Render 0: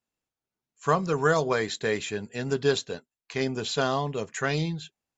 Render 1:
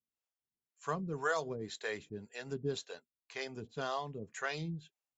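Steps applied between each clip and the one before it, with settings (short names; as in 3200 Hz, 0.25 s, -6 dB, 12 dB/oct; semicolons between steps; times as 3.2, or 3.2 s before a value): harmonic tremolo 1.9 Hz, depth 100%, crossover 430 Hz; gain -7.5 dB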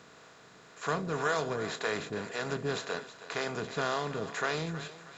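per-bin compression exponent 0.4; thinning echo 0.318 s, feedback 42%, high-pass 390 Hz, level -13 dB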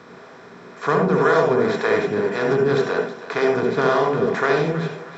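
reverb RT60 0.35 s, pre-delay 63 ms, DRR 1.5 dB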